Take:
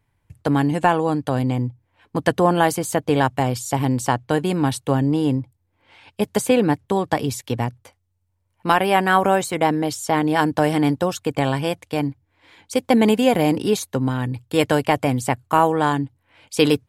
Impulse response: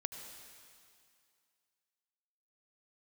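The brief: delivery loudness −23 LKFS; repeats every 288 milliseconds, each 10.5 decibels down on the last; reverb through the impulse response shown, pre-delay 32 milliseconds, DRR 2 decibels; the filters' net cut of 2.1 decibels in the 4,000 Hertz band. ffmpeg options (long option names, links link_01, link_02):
-filter_complex "[0:a]equalizer=frequency=4000:width_type=o:gain=-3,aecho=1:1:288|576|864:0.299|0.0896|0.0269,asplit=2[link_01][link_02];[1:a]atrim=start_sample=2205,adelay=32[link_03];[link_02][link_03]afir=irnorm=-1:irlink=0,volume=-1dB[link_04];[link_01][link_04]amix=inputs=2:normalize=0,volume=-5dB"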